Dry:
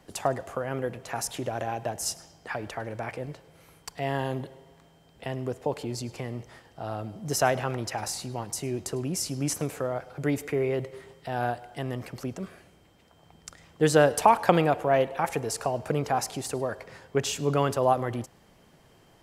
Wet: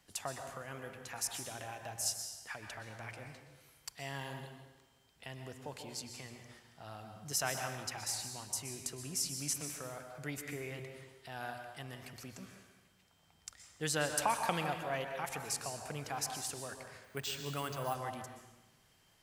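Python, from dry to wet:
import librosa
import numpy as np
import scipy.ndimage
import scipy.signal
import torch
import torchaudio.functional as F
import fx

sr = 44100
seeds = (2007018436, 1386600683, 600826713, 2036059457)

y = fx.tone_stack(x, sr, knobs='5-5-5')
y = fx.hum_notches(y, sr, base_hz=60, count=2)
y = fx.rev_plate(y, sr, seeds[0], rt60_s=1.1, hf_ratio=0.8, predelay_ms=110, drr_db=5.5)
y = fx.resample_bad(y, sr, factor=4, down='filtered', up='hold', at=(17.04, 17.95))
y = F.gain(torch.from_numpy(y), 2.0).numpy()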